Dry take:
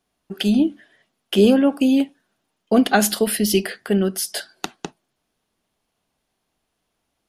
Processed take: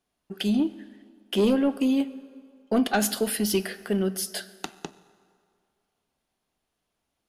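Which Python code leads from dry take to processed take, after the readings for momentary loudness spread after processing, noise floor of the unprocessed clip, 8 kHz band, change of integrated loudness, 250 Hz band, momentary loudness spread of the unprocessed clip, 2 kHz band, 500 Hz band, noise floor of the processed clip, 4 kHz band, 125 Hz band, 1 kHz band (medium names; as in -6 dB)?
16 LU, -76 dBFS, -6.0 dB, -6.5 dB, -6.5 dB, 16 LU, -7.0 dB, -7.0 dB, -81 dBFS, -6.5 dB, -6.5 dB, -7.0 dB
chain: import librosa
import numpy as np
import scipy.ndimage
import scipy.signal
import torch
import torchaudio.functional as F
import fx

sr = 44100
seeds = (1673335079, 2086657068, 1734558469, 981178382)

y = 10.0 ** (-8.5 / 20.0) * np.tanh(x / 10.0 ** (-8.5 / 20.0))
y = fx.rev_fdn(y, sr, rt60_s=2.2, lf_ratio=0.85, hf_ratio=0.7, size_ms=78.0, drr_db=14.5)
y = F.gain(torch.from_numpy(y), -5.5).numpy()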